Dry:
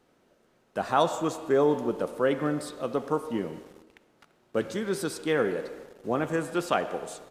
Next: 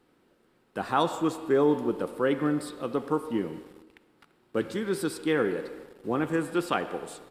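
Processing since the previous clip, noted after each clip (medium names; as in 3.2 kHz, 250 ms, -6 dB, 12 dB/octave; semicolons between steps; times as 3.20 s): graphic EQ with 31 bands 315 Hz +4 dB, 630 Hz -8 dB, 6.3 kHz -9 dB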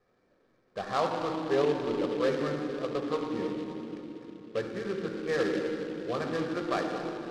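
rippled Chebyshev low-pass 2.4 kHz, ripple 3 dB; reverberation RT60 3.6 s, pre-delay 3 ms, DRR 3 dB; delay time shaken by noise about 2.6 kHz, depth 0.037 ms; trim -5.5 dB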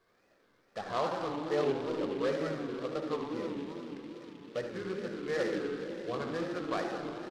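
wow and flutter 150 cents; delay 75 ms -11 dB; tape noise reduction on one side only encoder only; trim -4 dB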